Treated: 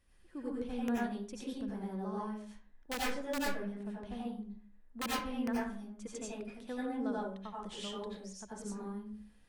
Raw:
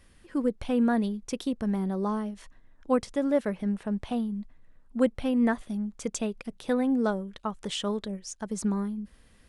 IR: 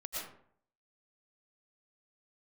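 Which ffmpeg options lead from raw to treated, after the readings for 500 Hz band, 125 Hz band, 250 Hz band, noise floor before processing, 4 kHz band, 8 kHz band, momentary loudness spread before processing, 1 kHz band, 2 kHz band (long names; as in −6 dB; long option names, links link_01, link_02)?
−11.5 dB, −11.5 dB, −11.0 dB, −59 dBFS, −5.0 dB, −6.5 dB, 12 LU, −5.5 dB, −3.5 dB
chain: -filter_complex "[0:a]aeval=exprs='(mod(5.96*val(0)+1,2)-1)/5.96':channel_layout=same[link_01];[1:a]atrim=start_sample=2205,asetrate=57330,aresample=44100[link_02];[link_01][link_02]afir=irnorm=-1:irlink=0,volume=-7.5dB"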